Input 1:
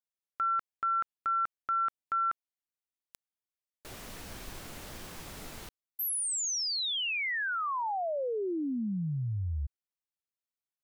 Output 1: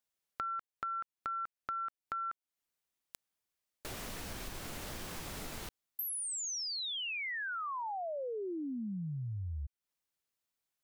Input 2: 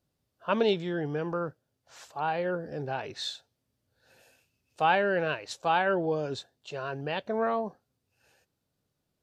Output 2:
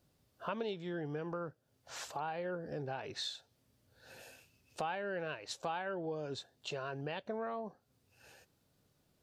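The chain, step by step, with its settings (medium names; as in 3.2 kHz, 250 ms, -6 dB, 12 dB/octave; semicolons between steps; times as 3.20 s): compression 4:1, threshold -46 dBFS; trim +6 dB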